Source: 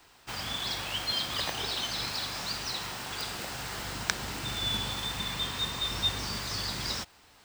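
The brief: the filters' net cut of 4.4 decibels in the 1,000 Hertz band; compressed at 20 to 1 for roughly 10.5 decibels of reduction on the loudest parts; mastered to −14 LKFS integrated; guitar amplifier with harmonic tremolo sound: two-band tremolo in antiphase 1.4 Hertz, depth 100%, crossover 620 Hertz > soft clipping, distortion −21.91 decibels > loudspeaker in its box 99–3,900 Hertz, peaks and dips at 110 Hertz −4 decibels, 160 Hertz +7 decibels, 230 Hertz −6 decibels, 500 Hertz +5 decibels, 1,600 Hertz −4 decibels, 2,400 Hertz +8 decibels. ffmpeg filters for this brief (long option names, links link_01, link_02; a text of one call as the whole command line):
ffmpeg -i in.wav -filter_complex "[0:a]equalizer=frequency=1000:width_type=o:gain=-5.5,acompressor=threshold=-35dB:ratio=20,acrossover=split=620[link_01][link_02];[link_01]aeval=exprs='val(0)*(1-1/2+1/2*cos(2*PI*1.4*n/s))':channel_layout=same[link_03];[link_02]aeval=exprs='val(0)*(1-1/2-1/2*cos(2*PI*1.4*n/s))':channel_layout=same[link_04];[link_03][link_04]amix=inputs=2:normalize=0,asoftclip=threshold=-31dB,highpass=99,equalizer=frequency=110:width_type=q:width=4:gain=-4,equalizer=frequency=160:width_type=q:width=4:gain=7,equalizer=frequency=230:width_type=q:width=4:gain=-6,equalizer=frequency=500:width_type=q:width=4:gain=5,equalizer=frequency=1600:width_type=q:width=4:gain=-4,equalizer=frequency=2400:width_type=q:width=4:gain=8,lowpass=frequency=3900:width=0.5412,lowpass=frequency=3900:width=1.3066,volume=29dB" out.wav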